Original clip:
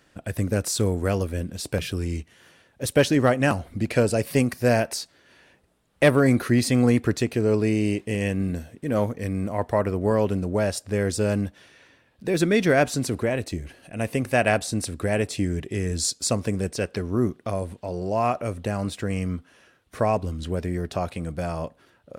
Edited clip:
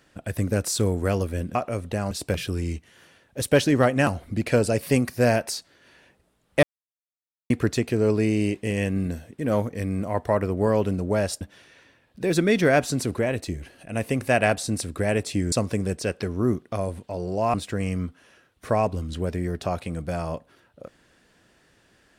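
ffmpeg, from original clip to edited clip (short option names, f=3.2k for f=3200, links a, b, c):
-filter_complex "[0:a]asplit=8[a][b][c][d][e][f][g][h];[a]atrim=end=1.552[i];[b]atrim=start=18.278:end=18.842[j];[c]atrim=start=1.548:end=6.07,asetpts=PTS-STARTPTS,afade=t=out:st=4.518:d=0.004:c=hsin[k];[d]atrim=start=6.07:end=6.94,asetpts=PTS-STARTPTS,volume=0[l];[e]atrim=start=6.94:end=10.852,asetpts=PTS-STARTPTS,afade=t=in:d=0.004:c=hsin[m];[f]atrim=start=11.448:end=15.562[n];[g]atrim=start=16.258:end=18.282[o];[h]atrim=start=18.838[p];[i][j]acrossfade=d=0.004:c1=hsin:c2=hsin[q];[k][l][m]concat=n=3:v=0:a=1[r];[q][r]acrossfade=d=0.004:c1=hsin:c2=hsin[s];[s][n]acrossfade=d=0.004:c1=hsin:c2=hsin[t];[t][o]acrossfade=d=0.004:c1=hsin:c2=hsin[u];[u][p]acrossfade=d=0.004:c1=hsin:c2=hsin"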